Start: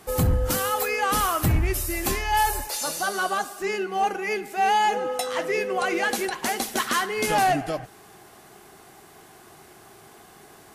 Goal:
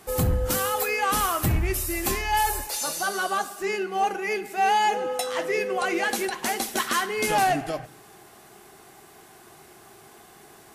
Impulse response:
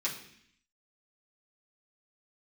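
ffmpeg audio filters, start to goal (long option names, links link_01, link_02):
-filter_complex "[0:a]asplit=2[link_01][link_02];[1:a]atrim=start_sample=2205,highshelf=frequency=10000:gain=8[link_03];[link_02][link_03]afir=irnorm=-1:irlink=0,volume=-16dB[link_04];[link_01][link_04]amix=inputs=2:normalize=0,volume=-1.5dB"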